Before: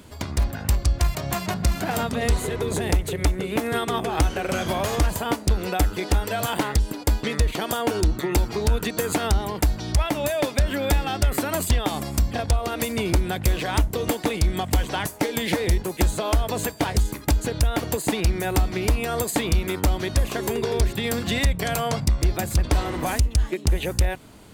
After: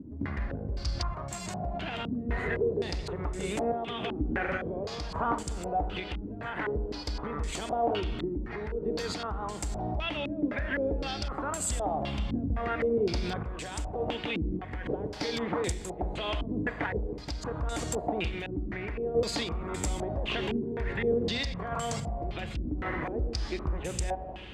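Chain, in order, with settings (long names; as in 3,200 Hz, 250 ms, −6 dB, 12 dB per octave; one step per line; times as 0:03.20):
brickwall limiter −21.5 dBFS, peak gain reduction 9.5 dB
four-comb reverb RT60 2.6 s, combs from 30 ms, DRR 8.5 dB
sample-and-hold tremolo
low-pass on a step sequencer 3.9 Hz 280–7,700 Hz
level −2.5 dB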